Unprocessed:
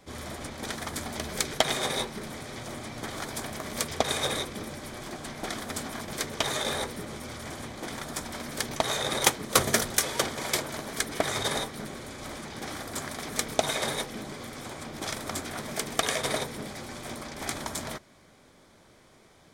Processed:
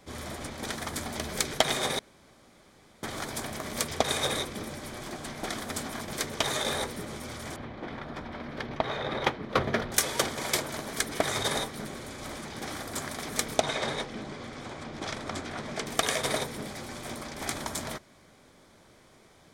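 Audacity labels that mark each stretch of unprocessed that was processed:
1.990000	3.030000	room tone
7.560000	9.920000	distance through air 330 m
13.600000	15.870000	distance through air 86 m

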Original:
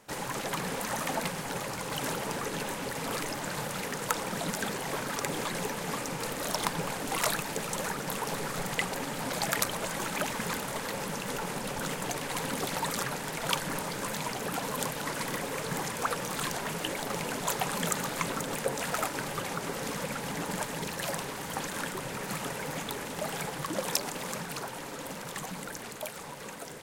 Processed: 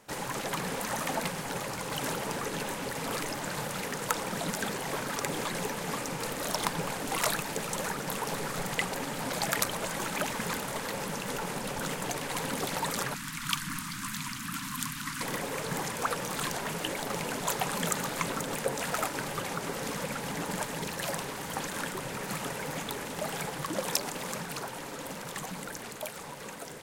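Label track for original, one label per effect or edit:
13.140000	15.210000	elliptic band-stop 270–1100 Hz, stop band 60 dB

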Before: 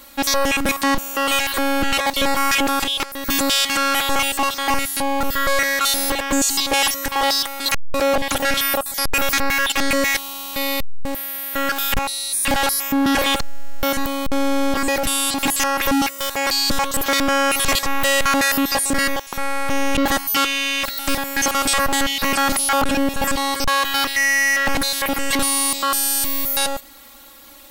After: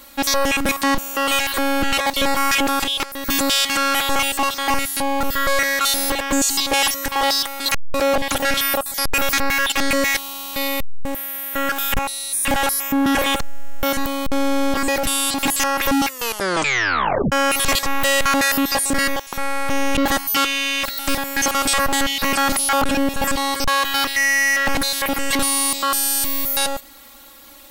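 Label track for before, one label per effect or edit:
10.680000	13.860000	peaking EQ 4.5 kHz -6.5 dB 0.52 oct
16.070000	16.070000	tape stop 1.25 s

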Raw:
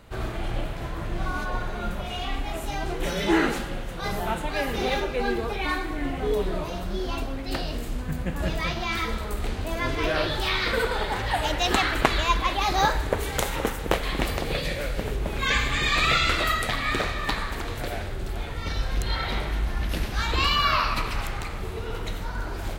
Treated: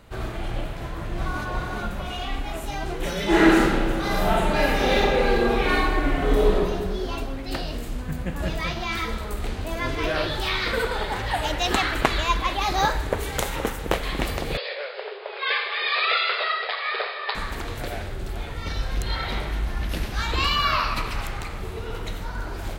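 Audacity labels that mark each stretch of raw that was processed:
0.800000	1.490000	echo throw 370 ms, feedback 45%, level -3.5 dB
3.260000	6.540000	reverb throw, RT60 1.7 s, DRR -5 dB
14.570000	17.350000	brick-wall FIR band-pass 380–5200 Hz

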